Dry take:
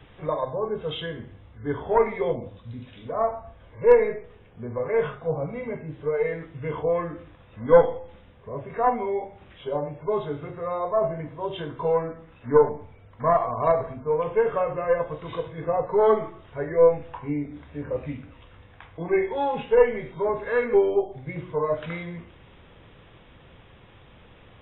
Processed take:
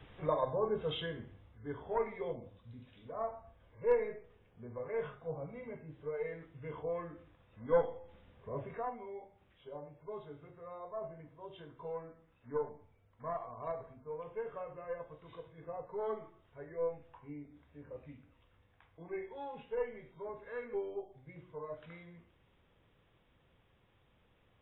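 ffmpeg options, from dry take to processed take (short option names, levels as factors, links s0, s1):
-af "volume=1.33,afade=t=out:st=0.77:d=0.92:silence=0.375837,afade=t=in:st=7.95:d=0.68:silence=0.398107,afade=t=out:st=8.63:d=0.23:silence=0.223872"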